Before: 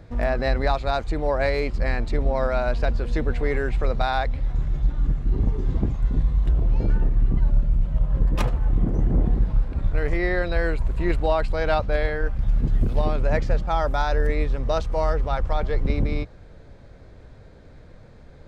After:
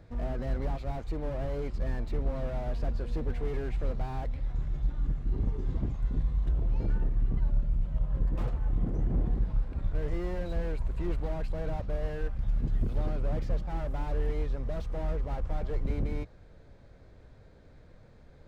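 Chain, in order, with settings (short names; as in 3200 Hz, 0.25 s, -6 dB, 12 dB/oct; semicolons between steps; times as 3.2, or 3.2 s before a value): slew limiter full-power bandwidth 23 Hz; gain -8 dB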